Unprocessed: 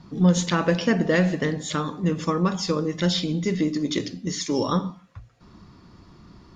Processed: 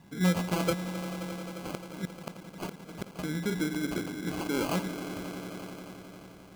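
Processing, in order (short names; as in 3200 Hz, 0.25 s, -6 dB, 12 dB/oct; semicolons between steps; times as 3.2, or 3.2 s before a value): 0.73–3.19 flipped gate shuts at -16 dBFS, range -29 dB; swelling echo 88 ms, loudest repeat 5, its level -15 dB; sample-and-hold 24×; low shelf 86 Hz -8.5 dB; gain -6.5 dB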